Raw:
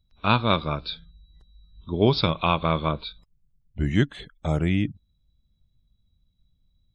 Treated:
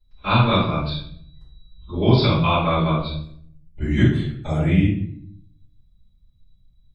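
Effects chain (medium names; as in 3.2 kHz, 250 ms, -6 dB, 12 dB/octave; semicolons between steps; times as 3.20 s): simulated room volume 100 m³, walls mixed, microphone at 4.1 m; trim -11.5 dB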